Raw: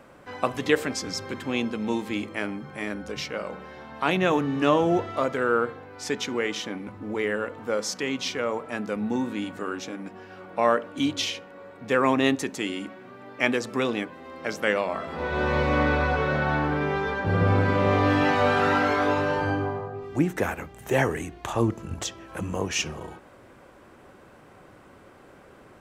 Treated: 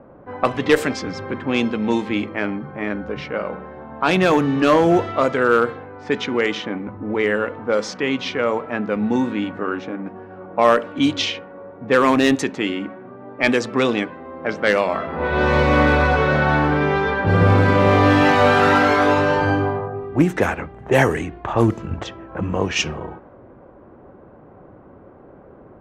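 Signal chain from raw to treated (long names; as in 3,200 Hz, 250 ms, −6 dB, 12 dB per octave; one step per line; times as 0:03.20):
asymmetric clip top −15.5 dBFS
low-pass that shuts in the quiet parts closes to 750 Hz, open at −19 dBFS
level +7.5 dB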